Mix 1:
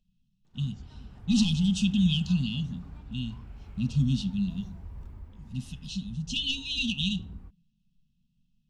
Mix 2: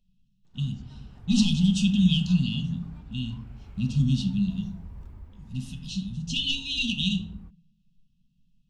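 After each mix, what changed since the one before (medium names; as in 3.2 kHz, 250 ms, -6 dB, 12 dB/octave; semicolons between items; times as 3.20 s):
speech: send +10.0 dB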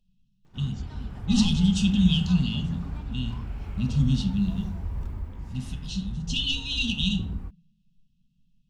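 background +10.5 dB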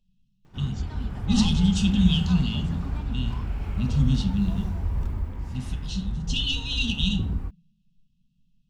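background +5.0 dB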